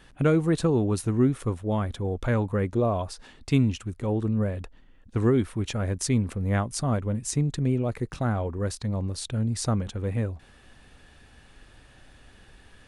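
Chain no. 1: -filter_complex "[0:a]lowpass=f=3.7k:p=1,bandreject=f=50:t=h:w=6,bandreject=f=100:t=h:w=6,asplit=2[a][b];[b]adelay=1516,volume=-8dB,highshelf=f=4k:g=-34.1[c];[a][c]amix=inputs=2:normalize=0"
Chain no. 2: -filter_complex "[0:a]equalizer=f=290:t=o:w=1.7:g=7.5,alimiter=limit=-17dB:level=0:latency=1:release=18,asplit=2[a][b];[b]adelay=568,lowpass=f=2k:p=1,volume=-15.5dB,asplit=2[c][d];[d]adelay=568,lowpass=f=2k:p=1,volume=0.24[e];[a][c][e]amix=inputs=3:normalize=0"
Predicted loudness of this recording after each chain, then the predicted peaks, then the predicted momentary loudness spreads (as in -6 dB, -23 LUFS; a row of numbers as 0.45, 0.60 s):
-27.0, -26.0 LUFS; -10.0, -15.5 dBFS; 14, 7 LU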